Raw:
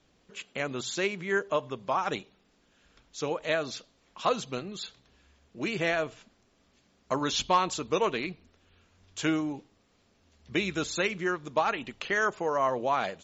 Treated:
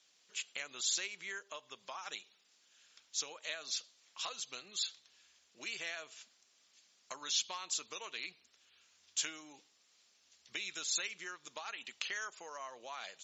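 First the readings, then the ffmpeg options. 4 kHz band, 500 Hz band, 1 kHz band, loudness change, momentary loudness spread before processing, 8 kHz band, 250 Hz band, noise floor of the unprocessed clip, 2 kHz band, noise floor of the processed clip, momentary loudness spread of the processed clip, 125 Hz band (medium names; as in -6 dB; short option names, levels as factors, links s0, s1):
-2.5 dB, -23.0 dB, -18.5 dB, -9.5 dB, 11 LU, no reading, -26.5 dB, -68 dBFS, -11.0 dB, -71 dBFS, 13 LU, under -30 dB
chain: -af "acompressor=threshold=0.02:ratio=4,bandpass=f=6700:t=q:w=0.85:csg=0,volume=2.11"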